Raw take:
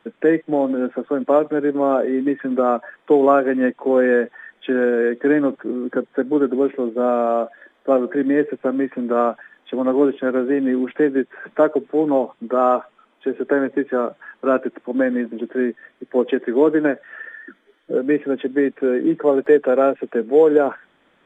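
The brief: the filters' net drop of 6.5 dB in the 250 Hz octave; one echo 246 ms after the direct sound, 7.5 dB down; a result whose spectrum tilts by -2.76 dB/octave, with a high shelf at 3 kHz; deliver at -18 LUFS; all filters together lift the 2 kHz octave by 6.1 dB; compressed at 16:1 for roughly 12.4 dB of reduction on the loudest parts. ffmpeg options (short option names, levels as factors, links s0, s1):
-af "equalizer=f=250:t=o:g=-8,equalizer=f=2000:t=o:g=5.5,highshelf=f=3000:g=8,acompressor=threshold=0.0794:ratio=16,aecho=1:1:246:0.422,volume=2.99"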